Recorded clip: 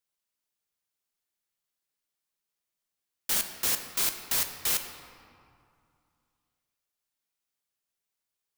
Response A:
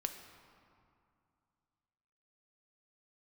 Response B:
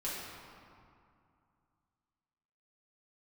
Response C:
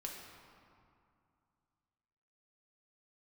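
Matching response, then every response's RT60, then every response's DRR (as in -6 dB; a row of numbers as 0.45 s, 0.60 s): A; 2.4 s, 2.4 s, 2.4 s; 5.5 dB, -9.0 dB, -1.0 dB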